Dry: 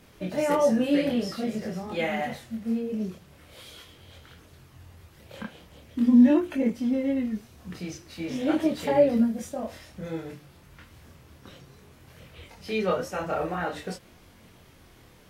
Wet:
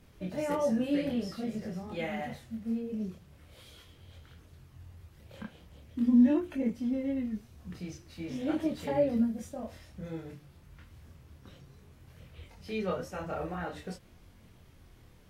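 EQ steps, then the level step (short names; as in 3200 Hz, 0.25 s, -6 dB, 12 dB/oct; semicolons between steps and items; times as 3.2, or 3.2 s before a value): low shelf 150 Hz +11 dB; -8.5 dB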